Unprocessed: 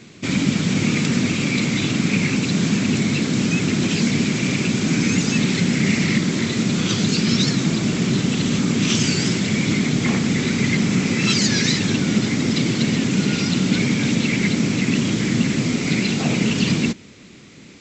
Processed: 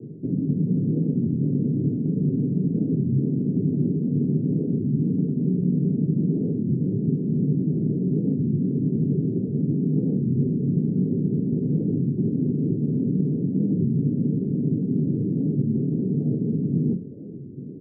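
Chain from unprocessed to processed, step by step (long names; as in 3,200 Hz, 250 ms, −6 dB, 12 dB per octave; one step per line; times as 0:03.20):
Butterworth low-pass 550 Hz 48 dB per octave
reversed playback
downward compressor 6 to 1, threshold −29 dBFS, peak gain reduction 15 dB
reversed playback
convolution reverb RT60 0.20 s, pre-delay 3 ms, DRR 1 dB
wow of a warped record 33 1/3 rpm, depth 160 cents
level −8 dB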